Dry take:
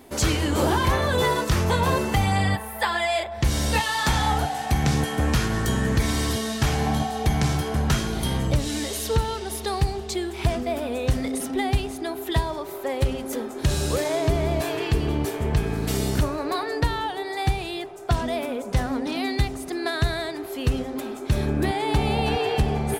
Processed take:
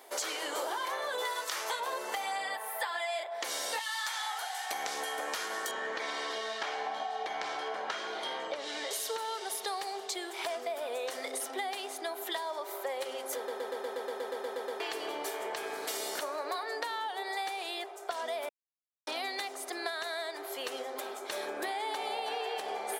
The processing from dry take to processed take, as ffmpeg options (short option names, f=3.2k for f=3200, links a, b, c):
-filter_complex "[0:a]asettb=1/sr,asplit=3[a][b][c];[a]atrim=end=1.254[d];[b]atrim=start=1.25:end=1.8,asetpts=PTS-STARTPTS,afade=t=in:d=0.004:c=qsin,afade=t=out:st=0.546:d=0.004:c=qsin,tiltshelf=f=710:g=-5.5[e];[c]atrim=start=1.796[f];[d][e]acrossfade=d=0.004:c1=hsin:c2=qsin[g];[g][f]acrossfade=d=0.004:c1=qsin:c2=hsin,asettb=1/sr,asplit=3[h][i][j];[h]atrim=end=3.794[k];[i]atrim=start=3.79:end=4.71,asetpts=PTS-STARTPTS,afade=t=in:d=0.004:c=qsin,afade=t=out:st=0.916:d=0.004:c=qsin,highpass=1.2k[l];[j]atrim=start=4.706[m];[k][l]acrossfade=d=0.004:c1=hsin:c2=qsin[n];[n][m]acrossfade=d=0.004:c1=qsin:c2=hsin,asettb=1/sr,asplit=3[o][p][q];[o]atrim=end=5.714[r];[p]atrim=start=5.71:end=8.91,asetpts=PTS-STARTPTS,afade=t=in:d=0.004:c=qsin,afade=t=out:st=3.196:d=0.004:c=qsin,lowpass=3.7k[s];[q]atrim=start=8.906[t];[r][s]acrossfade=d=0.004:c1=hsin:c2=qsin[u];[u][t]acrossfade=d=0.004:c1=qsin:c2=hsin,asplit=15[v][w][x][y][z][aa][ab][ac][ad][ae][af][ag][ah][ai][aj];[v]atrim=end=13.482[ak];[w]atrim=start=13.358:end=13.482[al];[x]atrim=start=13.358:end=13.482[am];[y]atrim=start=13.358:end=13.482[an];[z]atrim=start=13.358:end=13.482[ao];[aa]atrim=start=13.358:end=13.482[ap];[ab]atrim=start=13.358:end=13.482[aq];[ac]atrim=start=13.358:end=13.482[ar];[ad]atrim=start=13.358:end=13.482[as];[ae]atrim=start=13.358:end=13.482[at];[af]atrim=start=13.358:end=13.482[au];[ag]atrim=start=13.358:end=13.482[av];[ah]atrim=start=14.798:end=18.49,asetpts=PTS-STARTPTS,afade=t=out:st=3.688:d=0.004:c=hsin[aw];[ai]atrim=start=18.49:end=19.07,asetpts=PTS-STARTPTS,volume=0[ax];[aj]atrim=start=19.07,asetpts=PTS-STARTPTS,afade=t=in:d=0.004:c=hsin[ay];[ak][al]acrossfade=d=0.004:c1=hsin:c2=hsin[az];[az][am]acrossfade=d=0.004:c1=hsin:c2=hsin[ba];[ba][an]acrossfade=d=0.004:c1=hsin:c2=hsin[bb];[bb][ao]acrossfade=d=0.004:c1=hsin:c2=hsin[bc];[bc][ap]acrossfade=d=0.004:c1=hsin:c2=hsin[bd];[bd][aq]acrossfade=d=0.004:c1=hsin:c2=hsin[be];[be][ar]acrossfade=d=0.004:c1=hsin:c2=hsin[bf];[bf][as]acrossfade=d=0.004:c1=hsin:c2=hsin[bg];[bg][at]acrossfade=d=0.004:c1=hsin:c2=hsin[bh];[bh][au]acrossfade=d=0.004:c1=hsin:c2=hsin[bi];[bi][av]acrossfade=d=0.004:c1=hsin:c2=hsin[bj];[aw][ax][ay]concat=n=3:v=0:a=1[bk];[bj][bk]acrossfade=d=0.004:c1=hsin:c2=hsin,highpass=f=490:w=0.5412,highpass=f=490:w=1.3066,bandreject=f=2.6k:w=14,acompressor=threshold=-31dB:ratio=6,volume=-1.5dB"